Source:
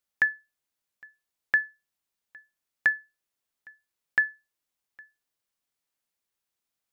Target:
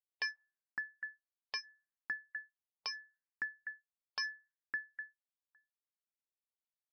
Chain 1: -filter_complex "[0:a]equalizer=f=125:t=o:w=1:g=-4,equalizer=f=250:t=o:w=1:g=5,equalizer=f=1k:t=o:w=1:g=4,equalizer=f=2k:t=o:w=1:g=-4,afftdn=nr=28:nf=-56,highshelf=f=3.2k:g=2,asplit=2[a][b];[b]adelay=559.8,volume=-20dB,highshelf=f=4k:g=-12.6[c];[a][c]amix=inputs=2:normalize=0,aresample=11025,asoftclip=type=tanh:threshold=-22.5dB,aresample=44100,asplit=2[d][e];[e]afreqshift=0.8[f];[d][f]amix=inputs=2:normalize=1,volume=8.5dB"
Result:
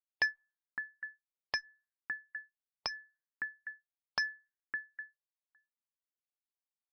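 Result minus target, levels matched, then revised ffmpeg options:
soft clip: distortion -7 dB
-filter_complex "[0:a]equalizer=f=125:t=o:w=1:g=-4,equalizer=f=250:t=o:w=1:g=5,equalizer=f=1k:t=o:w=1:g=4,equalizer=f=2k:t=o:w=1:g=-4,afftdn=nr=28:nf=-56,highshelf=f=3.2k:g=2,asplit=2[a][b];[b]adelay=559.8,volume=-20dB,highshelf=f=4k:g=-12.6[c];[a][c]amix=inputs=2:normalize=0,aresample=11025,asoftclip=type=tanh:threshold=-32.5dB,aresample=44100,asplit=2[d][e];[e]afreqshift=0.8[f];[d][f]amix=inputs=2:normalize=1,volume=8.5dB"

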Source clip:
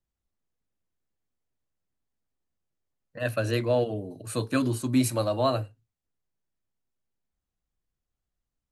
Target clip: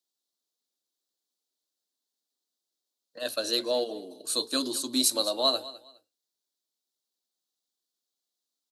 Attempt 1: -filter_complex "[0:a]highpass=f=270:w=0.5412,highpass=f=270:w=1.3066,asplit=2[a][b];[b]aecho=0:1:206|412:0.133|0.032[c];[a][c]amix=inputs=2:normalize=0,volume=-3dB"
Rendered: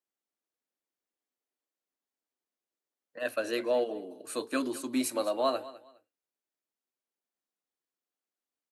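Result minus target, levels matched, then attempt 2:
4000 Hz band -10.5 dB
-filter_complex "[0:a]highpass=f=270:w=0.5412,highpass=f=270:w=1.3066,highshelf=f=3k:t=q:w=3:g=9.5,asplit=2[a][b];[b]aecho=0:1:206|412:0.133|0.032[c];[a][c]amix=inputs=2:normalize=0,volume=-3dB"

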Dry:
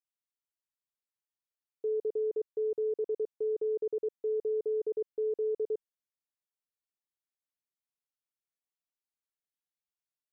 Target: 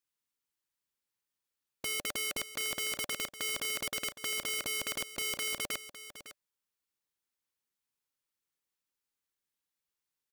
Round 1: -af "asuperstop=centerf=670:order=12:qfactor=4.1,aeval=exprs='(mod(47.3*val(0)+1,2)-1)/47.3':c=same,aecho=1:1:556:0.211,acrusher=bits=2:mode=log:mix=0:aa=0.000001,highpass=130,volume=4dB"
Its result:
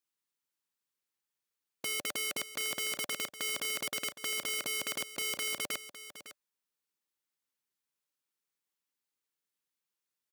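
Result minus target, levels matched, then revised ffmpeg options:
125 Hz band -3.0 dB
-af "asuperstop=centerf=670:order=12:qfactor=4.1,aeval=exprs='(mod(47.3*val(0)+1,2)-1)/47.3':c=same,aecho=1:1:556:0.211,acrusher=bits=2:mode=log:mix=0:aa=0.000001,volume=4dB"

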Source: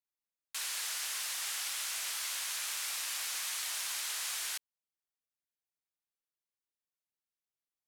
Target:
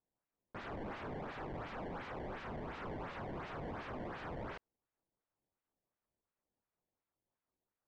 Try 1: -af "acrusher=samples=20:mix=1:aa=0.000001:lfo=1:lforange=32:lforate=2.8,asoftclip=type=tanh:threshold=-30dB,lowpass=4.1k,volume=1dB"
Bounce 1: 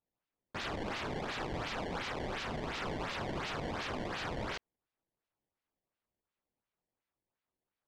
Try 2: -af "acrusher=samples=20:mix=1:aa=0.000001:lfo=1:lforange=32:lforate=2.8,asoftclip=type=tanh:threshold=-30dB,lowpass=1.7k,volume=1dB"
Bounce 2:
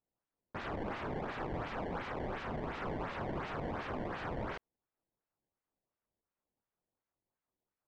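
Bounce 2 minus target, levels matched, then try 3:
soft clip: distortion -11 dB
-af "acrusher=samples=20:mix=1:aa=0.000001:lfo=1:lforange=32:lforate=2.8,asoftclip=type=tanh:threshold=-41dB,lowpass=1.7k,volume=1dB"

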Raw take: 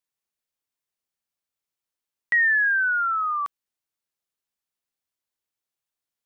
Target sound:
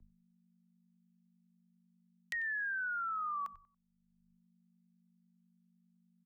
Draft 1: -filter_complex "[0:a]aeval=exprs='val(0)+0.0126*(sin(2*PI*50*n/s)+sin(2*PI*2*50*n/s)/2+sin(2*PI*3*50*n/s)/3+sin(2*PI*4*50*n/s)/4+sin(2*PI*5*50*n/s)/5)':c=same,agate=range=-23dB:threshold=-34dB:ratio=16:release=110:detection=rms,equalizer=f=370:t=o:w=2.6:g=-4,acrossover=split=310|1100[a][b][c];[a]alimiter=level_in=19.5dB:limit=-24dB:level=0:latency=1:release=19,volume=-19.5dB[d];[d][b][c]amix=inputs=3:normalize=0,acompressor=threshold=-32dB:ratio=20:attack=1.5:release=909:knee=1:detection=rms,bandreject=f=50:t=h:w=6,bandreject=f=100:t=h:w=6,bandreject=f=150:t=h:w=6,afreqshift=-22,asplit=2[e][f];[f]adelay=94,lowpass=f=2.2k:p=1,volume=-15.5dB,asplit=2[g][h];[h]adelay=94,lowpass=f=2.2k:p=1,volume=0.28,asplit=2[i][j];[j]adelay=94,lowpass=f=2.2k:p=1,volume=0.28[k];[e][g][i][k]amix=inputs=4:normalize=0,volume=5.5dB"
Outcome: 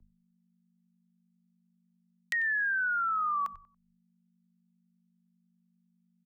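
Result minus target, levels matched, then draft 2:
compressor: peak gain reduction -7.5 dB
-filter_complex "[0:a]aeval=exprs='val(0)+0.0126*(sin(2*PI*50*n/s)+sin(2*PI*2*50*n/s)/2+sin(2*PI*3*50*n/s)/3+sin(2*PI*4*50*n/s)/4+sin(2*PI*5*50*n/s)/5)':c=same,agate=range=-23dB:threshold=-34dB:ratio=16:release=110:detection=rms,equalizer=f=370:t=o:w=2.6:g=-4,acrossover=split=310|1100[a][b][c];[a]alimiter=level_in=19.5dB:limit=-24dB:level=0:latency=1:release=19,volume=-19.5dB[d];[d][b][c]amix=inputs=3:normalize=0,acompressor=threshold=-40dB:ratio=20:attack=1.5:release=909:knee=1:detection=rms,bandreject=f=50:t=h:w=6,bandreject=f=100:t=h:w=6,bandreject=f=150:t=h:w=6,afreqshift=-22,asplit=2[e][f];[f]adelay=94,lowpass=f=2.2k:p=1,volume=-15.5dB,asplit=2[g][h];[h]adelay=94,lowpass=f=2.2k:p=1,volume=0.28,asplit=2[i][j];[j]adelay=94,lowpass=f=2.2k:p=1,volume=0.28[k];[e][g][i][k]amix=inputs=4:normalize=0,volume=5.5dB"

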